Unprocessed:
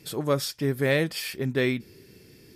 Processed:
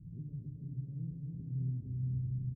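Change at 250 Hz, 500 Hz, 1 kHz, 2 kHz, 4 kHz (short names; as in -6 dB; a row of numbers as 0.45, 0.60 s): -14.5 dB, under -35 dB, under -40 dB, under -40 dB, under -40 dB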